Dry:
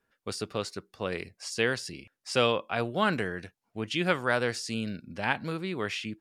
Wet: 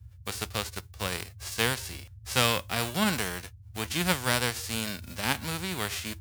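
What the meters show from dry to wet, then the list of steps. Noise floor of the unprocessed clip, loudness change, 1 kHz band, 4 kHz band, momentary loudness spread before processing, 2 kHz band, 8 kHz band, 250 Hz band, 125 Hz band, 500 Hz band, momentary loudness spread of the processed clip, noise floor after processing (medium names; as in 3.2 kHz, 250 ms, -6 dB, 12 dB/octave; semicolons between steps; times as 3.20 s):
-82 dBFS, +1.0 dB, -0.5 dB, +4.5 dB, 12 LU, 0.0 dB, +9.0 dB, -0.5 dB, +3.0 dB, -4.5 dB, 12 LU, -50 dBFS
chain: formants flattened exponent 0.3; band noise 62–110 Hz -46 dBFS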